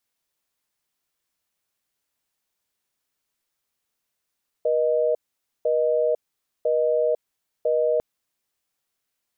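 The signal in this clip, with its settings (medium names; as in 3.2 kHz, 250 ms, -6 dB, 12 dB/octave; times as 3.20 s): call progress tone busy tone, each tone -21 dBFS 3.35 s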